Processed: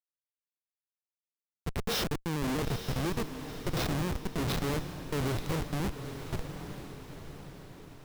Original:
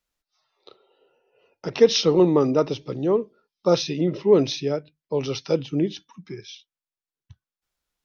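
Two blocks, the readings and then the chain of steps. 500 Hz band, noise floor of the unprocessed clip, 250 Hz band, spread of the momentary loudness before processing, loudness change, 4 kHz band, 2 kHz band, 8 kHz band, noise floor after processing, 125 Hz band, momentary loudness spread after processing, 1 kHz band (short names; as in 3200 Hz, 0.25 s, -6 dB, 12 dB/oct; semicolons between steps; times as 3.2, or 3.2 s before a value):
-17.0 dB, under -85 dBFS, -10.5 dB, 21 LU, -12.0 dB, -9.0 dB, 0.0 dB, n/a, under -85 dBFS, -3.0 dB, 15 LU, -5.5 dB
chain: dynamic EQ 710 Hz, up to -6 dB, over -37 dBFS, Q 3.2; harmonic-percussive split percussive -9 dB; negative-ratio compressor -25 dBFS, ratio -0.5; Schmitt trigger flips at -26.5 dBFS; on a send: diffused feedback echo 0.91 s, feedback 50%, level -9 dB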